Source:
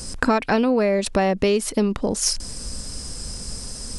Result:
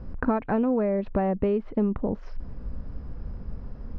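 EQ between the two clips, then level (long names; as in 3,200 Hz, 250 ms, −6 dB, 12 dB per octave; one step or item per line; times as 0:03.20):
low-pass filter 1,100 Hz 12 dB per octave
high-frequency loss of the air 280 metres
parametric band 520 Hz −5 dB 2.9 octaves
0.0 dB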